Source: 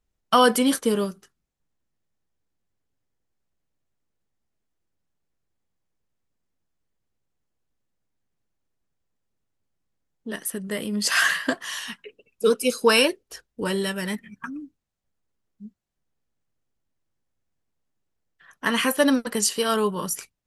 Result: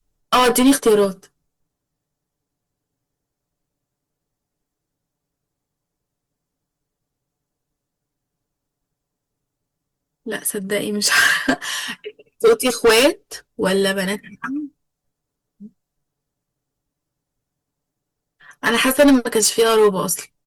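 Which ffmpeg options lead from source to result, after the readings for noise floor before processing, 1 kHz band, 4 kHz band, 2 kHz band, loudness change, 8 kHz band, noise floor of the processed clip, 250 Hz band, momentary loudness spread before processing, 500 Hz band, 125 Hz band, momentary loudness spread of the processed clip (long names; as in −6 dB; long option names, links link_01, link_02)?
−79 dBFS, +4.0 dB, +5.0 dB, +6.0 dB, +6.0 dB, +6.5 dB, −82 dBFS, +6.0 dB, 18 LU, +7.5 dB, +5.5 dB, 15 LU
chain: -filter_complex "[0:a]acrossover=split=180|1300|4200[link_01][link_02][link_03][link_04];[link_02]adynamicequalizer=threshold=0.0316:dfrequency=500:dqfactor=0.86:tfrequency=500:tqfactor=0.86:attack=5:release=100:ratio=0.375:range=2:mode=boostabove:tftype=bell[link_05];[link_03]agate=range=-9dB:threshold=-59dB:ratio=16:detection=peak[link_06];[link_01][link_05][link_06][link_04]amix=inputs=4:normalize=0,asoftclip=type=hard:threshold=-16.5dB,aecho=1:1:6.9:0.51,acontrast=60" -ar 48000 -c:a libopus -b:a 64k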